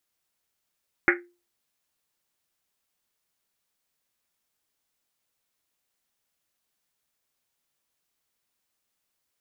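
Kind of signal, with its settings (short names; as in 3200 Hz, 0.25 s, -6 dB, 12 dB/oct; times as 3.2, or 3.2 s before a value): Risset drum, pitch 350 Hz, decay 0.33 s, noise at 1800 Hz, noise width 760 Hz, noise 60%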